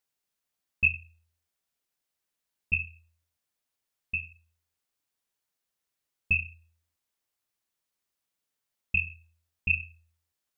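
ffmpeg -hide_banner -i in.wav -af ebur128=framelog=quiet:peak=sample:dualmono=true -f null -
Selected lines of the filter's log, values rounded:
Integrated loudness:
  I:         -26.0 LUFS
  Threshold: -37.7 LUFS
Loudness range:
  LRA:         5.4 LU
  Threshold: -52.9 LUFS
  LRA low:   -35.7 LUFS
  LRA high:  -30.3 LUFS
Sample peak:
  Peak:      -11.5 dBFS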